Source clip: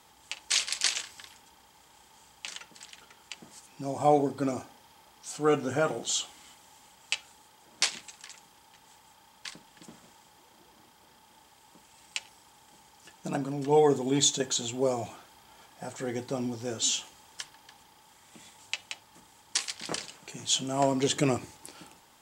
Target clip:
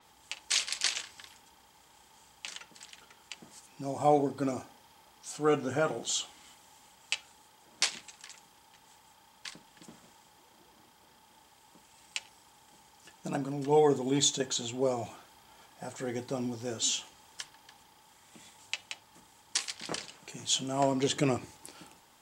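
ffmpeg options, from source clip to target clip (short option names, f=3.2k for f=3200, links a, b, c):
-af "adynamicequalizer=threshold=0.00562:dfrequency=5900:dqfactor=0.7:tfrequency=5900:tqfactor=0.7:attack=5:release=100:ratio=0.375:range=2.5:mode=cutabove:tftype=highshelf,volume=-2dB"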